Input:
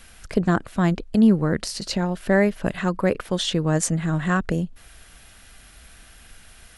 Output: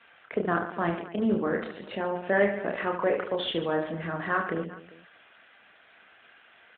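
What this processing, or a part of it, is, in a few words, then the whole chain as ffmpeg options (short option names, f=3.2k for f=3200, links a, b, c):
telephone: -filter_complex "[0:a]asplit=3[a][b][c];[a]afade=t=out:st=0.72:d=0.02[d];[b]highpass=62,afade=t=in:st=0.72:d=0.02,afade=t=out:st=1.34:d=0.02[e];[c]afade=t=in:st=1.34:d=0.02[f];[d][e][f]amix=inputs=3:normalize=0,asettb=1/sr,asplit=3[g][h][i];[g]atrim=end=2.924[j];[h]atrim=start=2.92:end=3.95,asetpts=PTS-STARTPTS,afade=t=in:d=0.004:c=qsin,afade=t=out:st=1.026:d=0.004:c=qsin,agate=range=-37dB:threshold=-34dB:ratio=16:detection=peak[k];[i]atrim=start=3.946[l];[j][k]acrossfade=d=0.004:c1=hsin:c2=qsin[m];[m][l]acrossfade=d=0.004:c1=qsin:c2=hsin,highpass=380,lowpass=3.1k,lowpass=5.5k,aecho=1:1:30|75|142.5|243.8|395.6:0.631|0.398|0.251|0.158|0.1,asoftclip=type=tanh:threshold=-10dB,volume=-2dB" -ar 8000 -c:a libopencore_amrnb -b:a 12200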